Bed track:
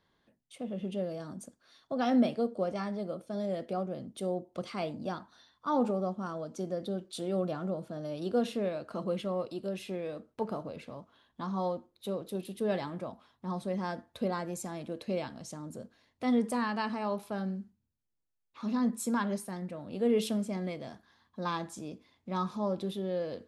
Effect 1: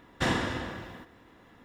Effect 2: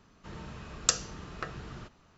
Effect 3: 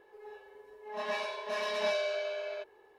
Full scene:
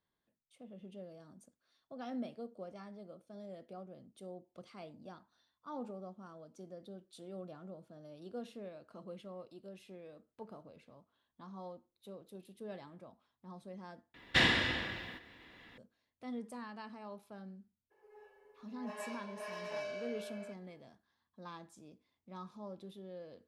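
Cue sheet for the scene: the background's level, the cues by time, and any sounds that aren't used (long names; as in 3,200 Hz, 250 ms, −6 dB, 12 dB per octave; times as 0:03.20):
bed track −15 dB
0:14.14: overwrite with 1 −5 dB + flat-topped bell 2,900 Hz +11 dB
0:17.90: mix in 3 −10 dB, fades 0.02 s + parametric band 3,700 Hz −10.5 dB 0.3 octaves
not used: 2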